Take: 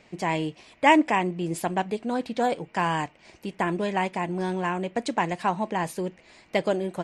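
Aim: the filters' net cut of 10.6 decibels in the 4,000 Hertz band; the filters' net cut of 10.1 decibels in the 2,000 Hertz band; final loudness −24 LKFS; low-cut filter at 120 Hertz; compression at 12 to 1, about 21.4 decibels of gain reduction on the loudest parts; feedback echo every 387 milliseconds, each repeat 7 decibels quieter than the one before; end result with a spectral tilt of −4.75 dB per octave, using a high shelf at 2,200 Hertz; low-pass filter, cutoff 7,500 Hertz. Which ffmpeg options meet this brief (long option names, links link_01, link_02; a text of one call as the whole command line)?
ffmpeg -i in.wav -af "highpass=120,lowpass=7500,equalizer=frequency=2000:width_type=o:gain=-7.5,highshelf=frequency=2200:gain=-6.5,equalizer=frequency=4000:width_type=o:gain=-5,acompressor=threshold=-38dB:ratio=12,aecho=1:1:387|774|1161|1548|1935:0.447|0.201|0.0905|0.0407|0.0183,volume=19dB" out.wav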